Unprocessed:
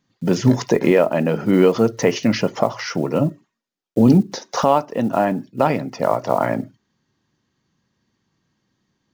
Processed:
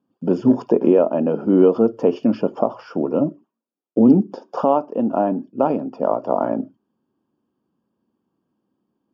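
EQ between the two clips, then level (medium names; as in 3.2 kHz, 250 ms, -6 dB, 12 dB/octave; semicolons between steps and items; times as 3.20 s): boxcar filter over 22 samples; high-pass 54 Hz; resonant low shelf 180 Hz -9.5 dB, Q 1.5; 0.0 dB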